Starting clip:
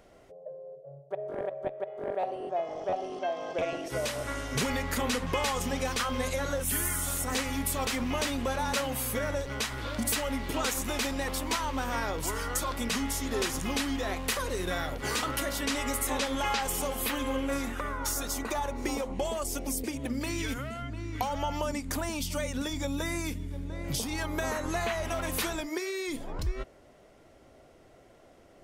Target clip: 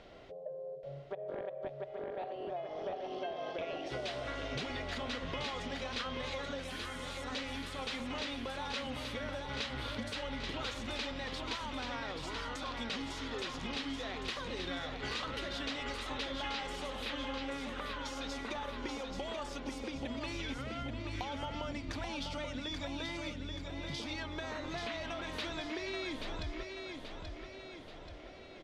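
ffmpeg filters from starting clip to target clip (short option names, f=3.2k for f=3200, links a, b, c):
-af "acompressor=threshold=-41dB:ratio=6,lowpass=f=3.8k:t=q:w=2.1,aecho=1:1:832|1664|2496|3328|4160|4992:0.531|0.265|0.133|0.0664|0.0332|0.0166,volume=2dB"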